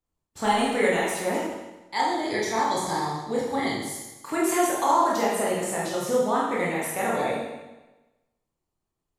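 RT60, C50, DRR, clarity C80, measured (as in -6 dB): 1.1 s, 0.5 dB, -6.0 dB, 3.5 dB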